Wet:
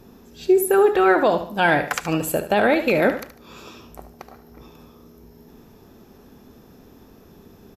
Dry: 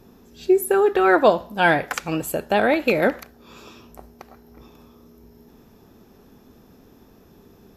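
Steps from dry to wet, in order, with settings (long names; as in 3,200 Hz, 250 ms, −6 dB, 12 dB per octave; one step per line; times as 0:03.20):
brickwall limiter −10.5 dBFS, peak gain reduction 7.5 dB
on a send: repeating echo 74 ms, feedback 32%, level −11.5 dB
on the sum: level +2.5 dB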